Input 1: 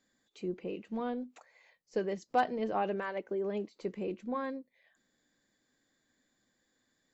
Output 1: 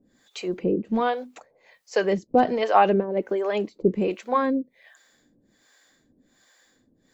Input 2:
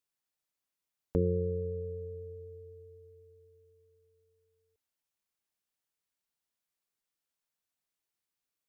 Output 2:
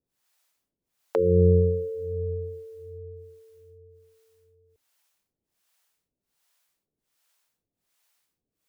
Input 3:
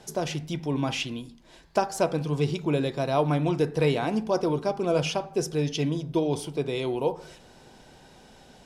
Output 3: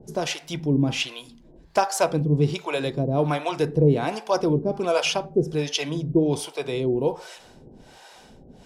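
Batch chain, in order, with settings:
hard clipping −12.5 dBFS
two-band tremolo in antiphase 1.3 Hz, depth 100%, crossover 520 Hz
loudness normalisation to −24 LKFS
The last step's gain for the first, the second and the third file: +18.5, +17.5, +8.0 decibels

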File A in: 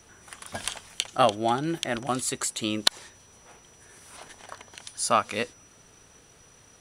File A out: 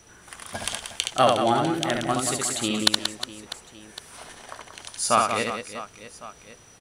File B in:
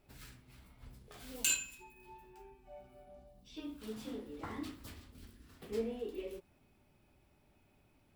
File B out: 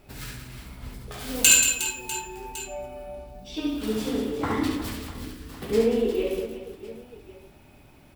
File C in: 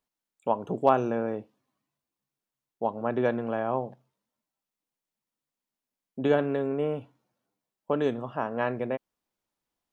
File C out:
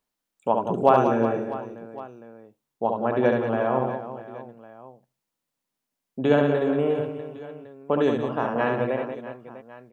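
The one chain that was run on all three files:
reverse bouncing-ball delay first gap 70 ms, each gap 1.6×, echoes 5
loudness normalisation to −24 LKFS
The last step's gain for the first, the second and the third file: +1.5, +14.5, +3.5 decibels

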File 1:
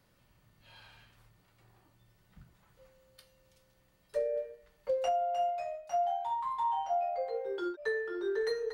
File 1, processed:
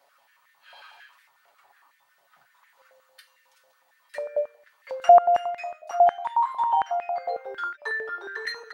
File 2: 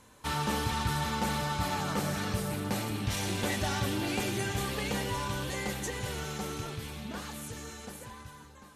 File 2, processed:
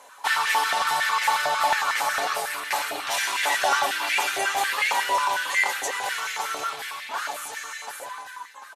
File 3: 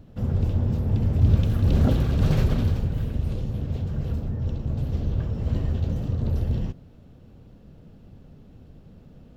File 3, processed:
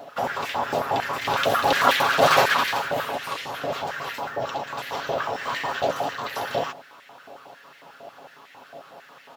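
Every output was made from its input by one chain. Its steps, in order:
comb filter 7.2 ms, depth 52%
high-pass on a step sequencer 11 Hz 680–1,900 Hz
loudness normalisation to −24 LKFS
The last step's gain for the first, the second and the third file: +3.5, +6.5, +14.5 decibels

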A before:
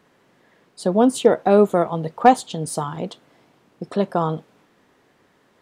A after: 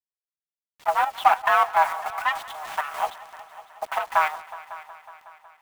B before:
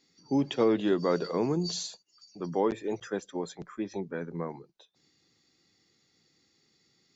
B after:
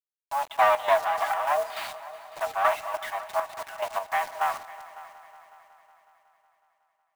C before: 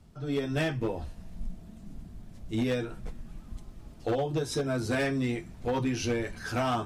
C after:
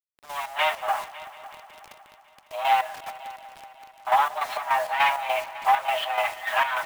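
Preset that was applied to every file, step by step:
lower of the sound and its delayed copy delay 5.8 ms
automatic gain control gain up to 13.5 dB
single-sideband voice off tune +290 Hz 380–3,100 Hz
in parallel at −6.5 dB: soft clipping −17.5 dBFS
on the sum: bit-depth reduction 6 bits, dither none
square-wave tremolo 3.4 Hz, depth 60%, duty 55%
on a send: echo machine with several playback heads 184 ms, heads all three, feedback 53%, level −21 dB
on the sum: level −4 dB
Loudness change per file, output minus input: −4.5, +3.5, +6.0 LU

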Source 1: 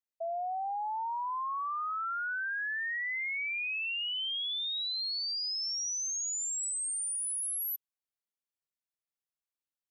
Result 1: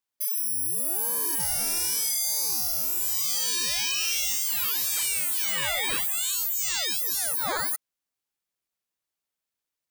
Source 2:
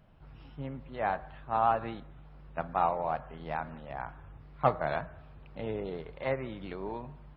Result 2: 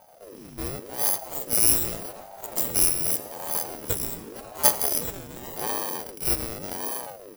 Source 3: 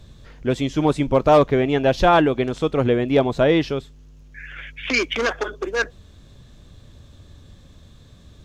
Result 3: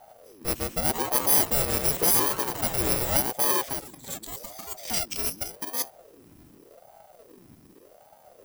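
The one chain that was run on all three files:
samples in bit-reversed order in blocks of 64 samples
delay with pitch and tempo change per echo 615 ms, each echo +6 semitones, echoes 3, each echo −6 dB
ring modulator whose carrier an LFO sweeps 460 Hz, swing 60%, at 0.86 Hz
loudness normalisation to −24 LKFS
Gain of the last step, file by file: +10.0, +9.5, −4.5 decibels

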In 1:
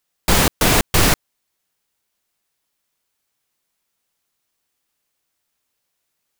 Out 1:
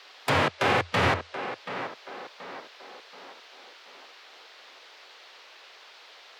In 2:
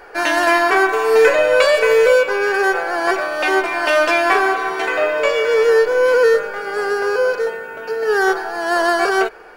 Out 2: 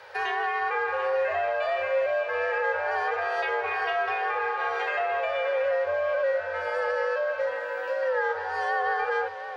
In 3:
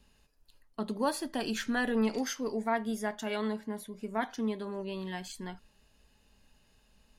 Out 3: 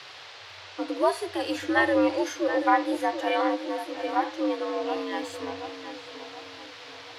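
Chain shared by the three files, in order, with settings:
treble cut that deepens with the level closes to 2,600 Hz, closed at −13 dBFS
bass and treble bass −10 dB, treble −6 dB
harmonic and percussive parts rebalanced percussive −14 dB
high-shelf EQ 11,000 Hz +9 dB
in parallel at +1 dB: downward compressor, threshold −25 dBFS
on the sum: brickwall limiter −10.5 dBFS
on a send: tape delay 729 ms, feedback 50%, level −8.5 dB, low-pass 2,300 Hz
on the sum: frequency shifter +85 Hz
noise in a band 420–4,500 Hz −49 dBFS
loudness normalisation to −27 LKFS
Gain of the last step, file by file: −2.0, −9.5, +4.0 decibels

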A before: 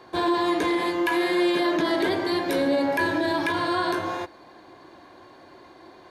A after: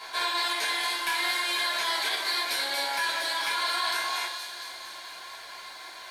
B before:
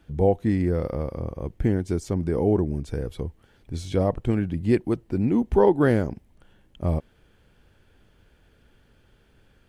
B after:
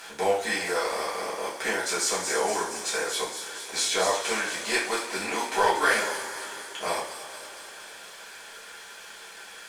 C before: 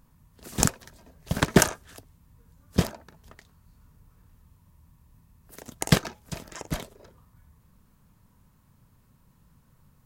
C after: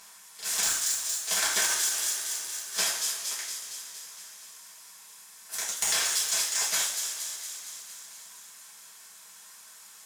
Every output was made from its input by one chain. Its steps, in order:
compressor on every frequency bin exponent 0.6
low-pass filter 11,000 Hz 12 dB per octave
reverb reduction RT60 1.1 s
high-pass filter 1,200 Hz 12 dB per octave
high-shelf EQ 3,700 Hz +9.5 dB
leveller curve on the samples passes 1
upward compression, threshold −47 dBFS
soft clipping −6 dBFS
delay with a high-pass on its return 232 ms, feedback 65%, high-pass 4,400 Hz, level −5 dB
coupled-rooms reverb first 0.41 s, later 4 s, from −18 dB, DRR −9 dB
boost into a limiter +4.5 dB
loudness normalisation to −27 LKFS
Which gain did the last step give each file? −17.5, −8.0, −15.0 decibels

